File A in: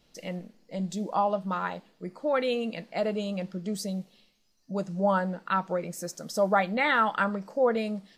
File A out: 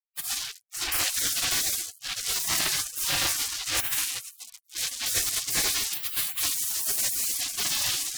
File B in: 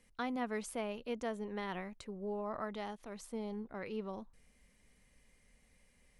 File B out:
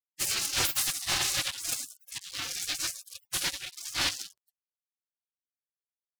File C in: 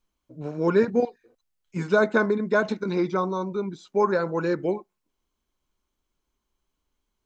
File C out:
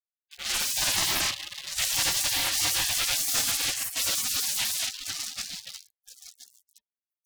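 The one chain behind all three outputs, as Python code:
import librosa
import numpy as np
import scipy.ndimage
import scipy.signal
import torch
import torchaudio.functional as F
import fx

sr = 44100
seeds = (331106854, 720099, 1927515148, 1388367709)

p1 = fx.high_shelf(x, sr, hz=3100.0, db=6.5)
p2 = p1 + fx.echo_banded(p1, sr, ms=1020, feedback_pct=49, hz=880.0, wet_db=-16, dry=0)
p3 = fx.rev_double_slope(p2, sr, seeds[0], early_s=0.66, late_s=3.2, knee_db=-26, drr_db=-9.5)
p4 = np.clip(10.0 ** (11.0 / 20.0) * p3, -1.0, 1.0) / 10.0 ** (11.0 / 20.0)
p5 = p3 + F.gain(torch.from_numpy(p4), -10.0).numpy()
p6 = p5 + 10.0 ** (-38.0 / 20.0) * np.sin(2.0 * np.pi * 630.0 * np.arange(len(p5)) / sr)
p7 = fx.low_shelf(p6, sr, hz=63.0, db=-8.5)
p8 = fx.small_body(p7, sr, hz=(460.0, 920.0, 3400.0), ring_ms=30, db=13)
p9 = fx.fuzz(p8, sr, gain_db=25.0, gate_db=-26.0)
p10 = fx.notch(p9, sr, hz=520.0, q=16.0)
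p11 = fx.spec_gate(p10, sr, threshold_db=-30, keep='weak')
y = F.gain(torch.from_numpy(p11), 4.5).numpy()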